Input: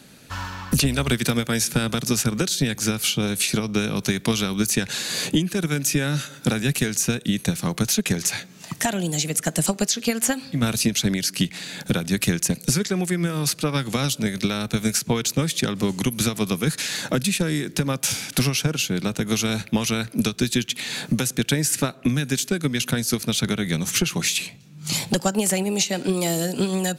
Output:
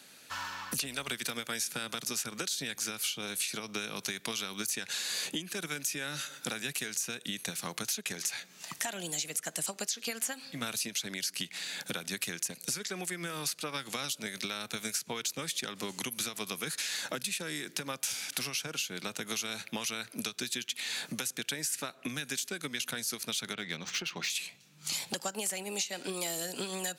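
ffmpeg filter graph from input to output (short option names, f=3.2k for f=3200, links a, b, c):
-filter_complex "[0:a]asettb=1/sr,asplit=3[a][b][c];[a]atrim=end=23.534[d];[b]atrim=start=23.53:end=24.3,asetpts=PTS-STARTPTS,afade=t=in:d=0.004:c=qsin,afade=t=out:st=0.766:d=0.004:c=qsin,lowpass=f=5.9k:w=0.5412,lowpass=f=5.9k:w=1.3066,adynamicsmooth=sensitivity=4:basefreq=3.9k[e];[c]atrim=start=24.296[f];[d][e]acrossfade=d=0.004:c1=hsin:c2=qsin[g];[g][f]acrossfade=d=0.004:c1=qsin:c2=hsin,highpass=f=1k:p=1,acompressor=threshold=-30dB:ratio=3,volume=-3dB"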